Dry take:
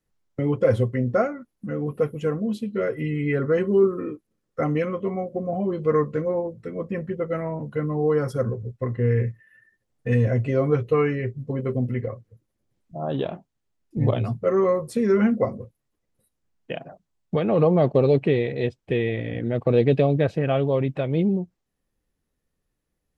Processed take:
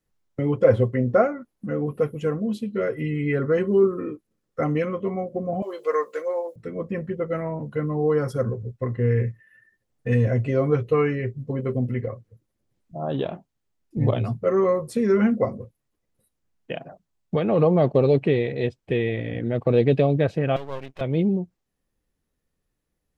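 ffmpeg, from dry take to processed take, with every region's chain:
-filter_complex "[0:a]asettb=1/sr,asplit=3[a][b][c];[a]atrim=end=0.644[d];[b]atrim=start=0.64:end=1.86,asetpts=PTS-STARTPTS,afade=t=in:d=0.004:c=qsin,afade=t=out:st=1.216:d=0.004:c=qsin,acrossover=split=3600[e][f];[f]acompressor=threshold=-59dB:ratio=4:attack=1:release=60[g];[e][g]amix=inputs=2:normalize=0,equalizer=f=670:t=o:w=2.4:g=3.5[h];[c]atrim=start=1.856[i];[d][h]acrossfade=d=0.004:c1=hsin:c2=qsin[j];[j][i]acrossfade=d=0.004:c1=qsin:c2=hsin,asettb=1/sr,asplit=3[k][l][m];[k]atrim=end=5.624[n];[l]atrim=start=5.62:end=6.56,asetpts=PTS-STARTPTS,afade=t=in:d=0.004:c=qsin,afade=t=out:st=0.936:d=0.004:c=qsin,highpass=f=460:w=0.5412,highpass=f=460:w=1.3066,aemphasis=mode=production:type=75kf[o];[m]atrim=start=6.556[p];[n][o]acrossfade=d=0.004:c1=hsin:c2=qsin[q];[q][p]acrossfade=d=0.004:c1=qsin:c2=hsin,asettb=1/sr,asplit=3[r][s][t];[r]atrim=end=20.564[u];[s]atrim=start=20.56:end=21.01,asetpts=PTS-STARTPTS,afade=t=in:d=0.004:c=qsin,afade=t=out:st=0.446:d=0.004:c=qsin,highpass=f=1k:p=1,aeval=exprs='max(val(0),0)':c=same[v];[t]atrim=start=21.006[w];[u][v]acrossfade=d=0.004:c1=hsin:c2=qsin[x];[x][w]acrossfade=d=0.004:c1=qsin:c2=hsin"

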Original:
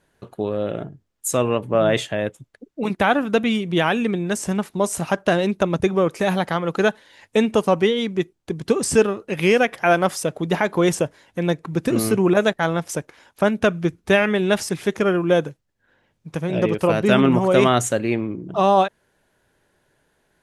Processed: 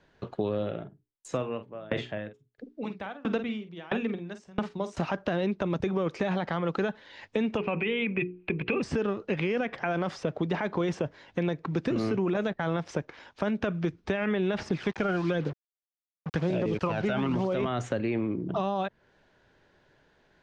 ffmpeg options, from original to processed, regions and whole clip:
-filter_complex "[0:a]asettb=1/sr,asplit=3[a][b][c];[a]atrim=end=0.584[d];[b]atrim=start=0.58:end=4.97,asetpts=PTS-STARTPTS,afade=t=in:d=0.004:c=qsin,afade=t=out:st=4.386:d=0.004:c=qsin,bandreject=f=60:t=h:w=6,bandreject=f=120:t=h:w=6,bandreject=f=180:t=h:w=6,bandreject=f=240:t=h:w=6,bandreject=f=300:t=h:w=6,bandreject=f=360:t=h:w=6,bandreject=f=420:t=h:w=6,asplit=2[e][f];[f]adelay=47,volume=-9.5dB[g];[e][g]amix=inputs=2:normalize=0,atrim=end_sample=193599,aeval=exprs='val(0)*pow(10,-31*if(lt(mod(1.5*n/s,1),2*abs(1.5)/1000),1-mod(1.5*n/s,1)/(2*abs(1.5)/1000),(mod(1.5*n/s,1)-2*abs(1.5)/1000)/(1-2*abs(1.5)/1000))/20)':c=same[h];[c]atrim=start=4.966[i];[d][h]acrossfade=d=0.004:c1=hsin:c2=qsin[j];[j][i]acrossfade=d=0.004:c1=qsin:c2=hsin,asettb=1/sr,asplit=3[k][l][m];[k]atrim=end=7.574[n];[l]atrim=start=7.57:end=8.82,asetpts=PTS-STARTPTS,afade=t=in:d=0.004:c=qsin,afade=t=out:st=1.246:d=0.004:c=qsin,lowpass=f=2.5k:t=q:w=16,bandreject=f=60:t=h:w=6,bandreject=f=120:t=h:w=6,bandreject=f=180:t=h:w=6,bandreject=f=240:t=h:w=6,bandreject=f=300:t=h:w=6,bandreject=f=360:t=h:w=6,bandreject=f=420:t=h:w=6,bandreject=f=480:t=h:w=6[o];[m]atrim=start=8.816[p];[n][o]acrossfade=d=0.004:c1=hsin:c2=qsin[q];[q][p]acrossfade=d=0.004:c1=qsin:c2=hsin,asettb=1/sr,asplit=3[r][s][t];[r]atrim=end=14.584[u];[s]atrim=start=14.58:end=17.66,asetpts=PTS-STARTPTS,afade=t=in:d=0.004:c=qsin,afade=t=out:st=3.076:d=0.004:c=qsin,aphaser=in_gain=1:out_gain=1:delay=1.4:decay=0.55:speed=1:type=sinusoidal,acrusher=bits=5:mix=0:aa=0.5[v];[t]atrim=start=17.656[w];[u][v]acrossfade=d=0.004:c1=hsin:c2=qsin[x];[x][w]acrossfade=d=0.004:c1=qsin:c2=hsin,lowpass=f=5.4k:w=0.5412,lowpass=f=5.4k:w=1.3066,alimiter=limit=-14dB:level=0:latency=1:release=19,acrossover=split=230|2800[y][z][aa];[y]acompressor=threshold=-35dB:ratio=4[ab];[z]acompressor=threshold=-30dB:ratio=4[ac];[aa]acompressor=threshold=-52dB:ratio=4[ad];[ab][ac][ad]amix=inputs=3:normalize=0,volume=1.5dB"

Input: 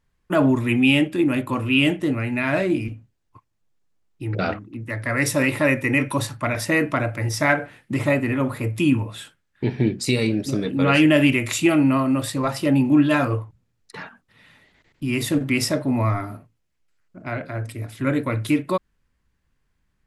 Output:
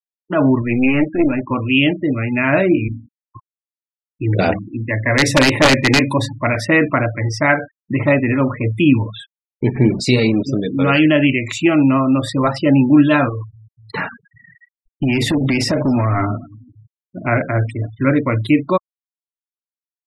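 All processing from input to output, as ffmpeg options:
-filter_complex "[0:a]asettb=1/sr,asplit=3[a][b][c];[a]atrim=end=0.624[d];[b]atrim=start=0.62:end=1.51,asetpts=PTS-STARTPTS,afade=t=in:d=0.004:c=qsin,afade=t=out:st=0.886:d=0.004:c=qsin,lowshelf=f=67:g=-10,aeval=exprs='(tanh(4.47*val(0)+0.6)-tanh(0.6))/4.47':c=same,asuperstop=centerf=4300:order=8:qfactor=1[e];[c]atrim=start=1.506[f];[d][e]acrossfade=d=0.004:c1=hsin:c2=qsin[g];[g][f]acrossfade=d=0.004:c1=qsin:c2=hsin,asettb=1/sr,asplit=3[h][i][j];[h]atrim=end=2.724[k];[i]atrim=start=2.72:end=6.45,asetpts=PTS-STARTPTS,afade=t=in:d=0.004:c=qsin,afade=t=out:st=3.726:d=0.004:c=qsin,equalizer=f=1.3k:t=o:w=0.25:g=-13.5,bandreject=f=46.56:t=h:w=4,bandreject=f=93.12:t=h:w=4,bandreject=f=139.68:t=h:w=4,bandreject=f=186.24:t=h:w=4,bandreject=f=232.8:t=h:w=4,bandreject=f=279.36:t=h:w=4,aeval=exprs='(mod(3.76*val(0)+1,2)-1)/3.76':c=same[l];[j]atrim=start=6.446[m];[k][l]acrossfade=d=0.004:c1=hsin:c2=qsin[n];[n][m]acrossfade=d=0.004:c1=qsin:c2=hsin,asettb=1/sr,asplit=3[o][p][q];[o]atrim=end=9.754[r];[p]atrim=start=9.75:end=10.43,asetpts=PTS-STARTPTS,afade=t=in:d=0.004:c=qsin,afade=t=out:st=0.676:d=0.004:c=qsin,aeval=exprs='val(0)+0.5*0.0376*sgn(val(0))':c=same,equalizer=f=87:t=o:w=0.21:g=-4,asplit=2[s][t];[t]adelay=32,volume=-14dB[u];[s][u]amix=inputs=2:normalize=0,atrim=end_sample=29988[v];[q]atrim=start=10.426[w];[r][v]acrossfade=d=0.004:c1=hsin:c2=qsin[x];[x][w]acrossfade=d=0.004:c1=qsin:c2=hsin,asettb=1/sr,asplit=3[y][z][aa];[y]atrim=end=13.294[ab];[z]atrim=start=13.29:end=17.28,asetpts=PTS-STARTPTS,afade=t=in:d=0.004:c=qsin,afade=t=out:st=3.986:d=0.004:c=qsin,acompressor=threshold=-24dB:ratio=8:attack=3.2:release=140:knee=1:detection=peak,asoftclip=type=hard:threshold=-25.5dB,aecho=1:1:243|486|729|972:0.0891|0.0508|0.029|0.0165,atrim=end_sample=175959[ac];[aa]atrim=start=17.276[ad];[ab][ac]acrossfade=d=0.004:c1=hsin:c2=qsin[ae];[ae][ad]acrossfade=d=0.004:c1=qsin:c2=hsin,dynaudnorm=f=120:g=7:m=14.5dB,afftfilt=real='re*gte(hypot(re,im),0.0631)':imag='im*gte(hypot(re,im),0.0631)':win_size=1024:overlap=0.75,lowpass=5.6k,volume=-1dB"

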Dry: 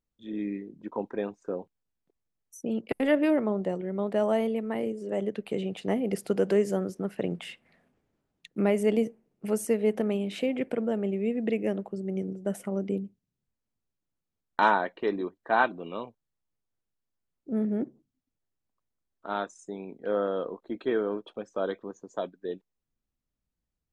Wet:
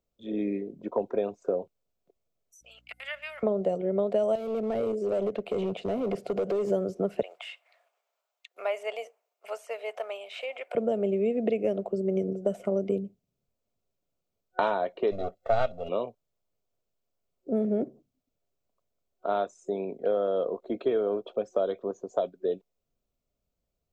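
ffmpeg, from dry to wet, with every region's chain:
-filter_complex "[0:a]asettb=1/sr,asplit=3[a][b][c];[a]atrim=end=2.614[d];[b]atrim=start=2.61:end=3.43,asetpts=PTS-STARTPTS,afade=t=in:d=0.004:c=qsin,afade=t=out:st=0.816:d=0.004:c=qsin,highpass=f=1.5k:w=0.5412,highpass=f=1.5k:w=1.3066,aeval=exprs='val(0)+0.000355*(sin(2*PI*60*n/s)+sin(2*PI*2*60*n/s)/2+sin(2*PI*3*60*n/s)/3+sin(2*PI*4*60*n/s)/4+sin(2*PI*5*60*n/s)/5)':c=same[e];[c]atrim=start=3.426[f];[d][e]acrossfade=d=0.004:c1=hsin:c2=qsin[g];[g][f]acrossfade=d=0.004:c1=qsin:c2=hsin,asettb=1/sr,asplit=3[h][i][j];[h]atrim=end=4.354[k];[i]atrim=start=4.35:end=6.7,asetpts=PTS-STARTPTS,afade=t=in:d=0.004:c=qsin,afade=t=out:st=2.346:d=0.004:c=qsin,acompressor=threshold=-28dB:ratio=4:attack=3.2:release=140:knee=1:detection=peak,volume=31dB,asoftclip=hard,volume=-31dB[l];[j]atrim=start=6.696[m];[k][l]acrossfade=d=0.004:c1=hsin:c2=qsin[n];[n][m]acrossfade=d=0.004:c1=qsin:c2=hsin,asettb=1/sr,asplit=3[o][p][q];[o]atrim=end=7.224[r];[p]atrim=start=7.22:end=10.75,asetpts=PTS-STARTPTS,afade=t=in:d=0.004:c=qsin,afade=t=out:st=3.526:d=0.004:c=qsin,highpass=f=830:w=0.5412,highpass=f=830:w=1.3066,highshelf=f=10k:g=4.5[s];[q]atrim=start=10.746[t];[r][s]acrossfade=d=0.004:c1=hsin:c2=qsin[u];[u][t]acrossfade=d=0.004:c1=qsin:c2=hsin,asettb=1/sr,asplit=3[v][w][x];[v]atrim=end=15.114[y];[w]atrim=start=15.11:end=15.89,asetpts=PTS-STARTPTS,afade=t=in:d=0.004:c=qsin,afade=t=out:st=0.776:d=0.004:c=qsin,aeval=exprs='if(lt(val(0),0),0.447*val(0),val(0))':c=same,aecho=1:1:1.5:0.92,atrim=end_sample=34398[z];[x]atrim=start=15.886[aa];[y][z]acrossfade=d=0.004:c1=hsin:c2=qsin[ab];[ab][aa]acrossfade=d=0.004:c1=qsin:c2=hsin,acrossover=split=3400[ac][ad];[ad]acompressor=threshold=-57dB:ratio=4:attack=1:release=60[ae];[ac][ae]amix=inputs=2:normalize=0,superequalizer=7b=2.24:8b=3.16:11b=0.501:16b=0.447,acrossover=split=130|3000[af][ag][ah];[ag]acompressor=threshold=-26dB:ratio=6[ai];[af][ai][ah]amix=inputs=3:normalize=0,volume=2.5dB"

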